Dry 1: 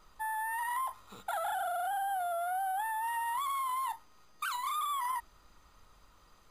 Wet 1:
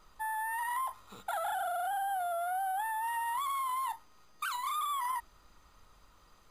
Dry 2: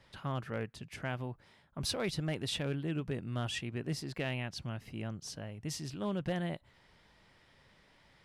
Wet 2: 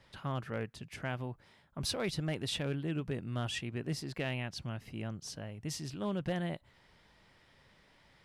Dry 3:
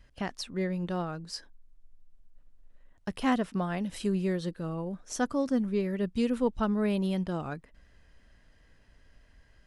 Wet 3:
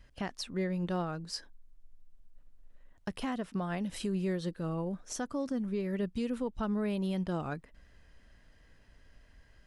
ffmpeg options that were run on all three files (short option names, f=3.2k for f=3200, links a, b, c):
-af "alimiter=level_in=1dB:limit=-24dB:level=0:latency=1:release=232,volume=-1dB"